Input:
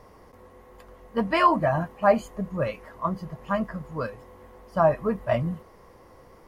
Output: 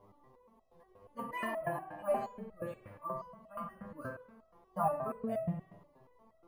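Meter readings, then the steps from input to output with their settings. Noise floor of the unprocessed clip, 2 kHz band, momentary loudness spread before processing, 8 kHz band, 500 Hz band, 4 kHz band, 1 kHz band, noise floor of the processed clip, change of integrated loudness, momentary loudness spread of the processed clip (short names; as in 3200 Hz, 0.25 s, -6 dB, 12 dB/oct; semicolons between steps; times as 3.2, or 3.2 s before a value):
-52 dBFS, -13.5 dB, 13 LU, n/a, -13.0 dB, under -15 dB, -12.5 dB, -68 dBFS, -13.0 dB, 11 LU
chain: bin magnitudes rounded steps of 30 dB; careless resampling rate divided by 4×, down none, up hold; high shelf 3100 Hz -11 dB; spring tank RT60 1 s, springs 49 ms, chirp 70 ms, DRR 4 dB; stepped resonator 8.4 Hz 100–650 Hz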